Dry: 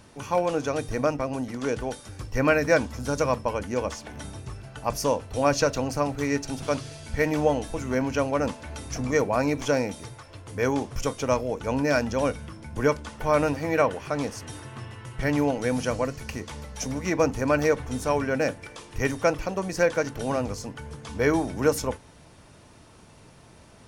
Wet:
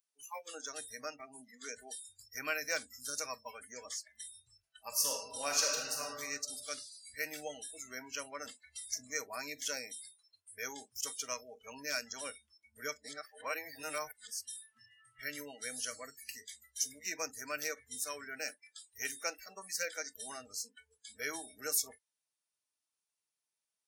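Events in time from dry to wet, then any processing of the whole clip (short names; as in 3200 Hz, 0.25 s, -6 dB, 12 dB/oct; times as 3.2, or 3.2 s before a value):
4.88–6.08 reverb throw, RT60 1.8 s, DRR -1 dB
13.04–14.28 reverse
whole clip: differentiator; spectral noise reduction 30 dB; gain +1.5 dB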